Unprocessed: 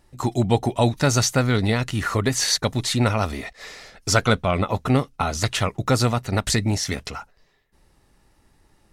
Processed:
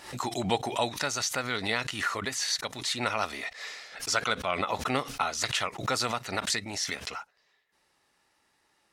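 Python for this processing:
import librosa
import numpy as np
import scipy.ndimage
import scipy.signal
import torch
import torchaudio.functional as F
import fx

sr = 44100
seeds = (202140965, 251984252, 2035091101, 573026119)

y = fx.highpass(x, sr, hz=1400.0, slope=6)
y = fx.rider(y, sr, range_db=4, speed_s=0.5)
y = fx.high_shelf(y, sr, hz=8200.0, db=-10.0)
y = fx.pre_swell(y, sr, db_per_s=100.0)
y = y * librosa.db_to_amplitude(-2.0)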